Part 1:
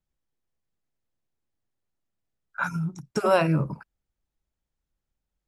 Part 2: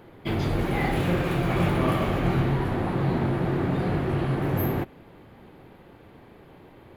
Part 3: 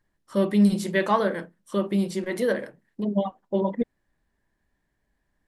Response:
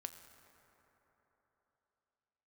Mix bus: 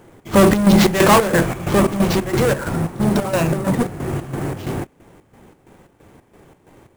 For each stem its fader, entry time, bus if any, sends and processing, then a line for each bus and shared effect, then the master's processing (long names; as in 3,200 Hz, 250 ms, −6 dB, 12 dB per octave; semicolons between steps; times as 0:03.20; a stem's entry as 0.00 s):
−5.0 dB, 0.00 s, no send, leveller curve on the samples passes 3
+2.5 dB, 0.00 s, no send, no processing
+2.5 dB, 0.00 s, no send, leveller curve on the samples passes 5; automatic ducking −7 dB, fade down 1.60 s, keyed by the first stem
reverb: not used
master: square-wave tremolo 3 Hz, depth 65%, duty 60%; sample-rate reduction 9,500 Hz, jitter 20%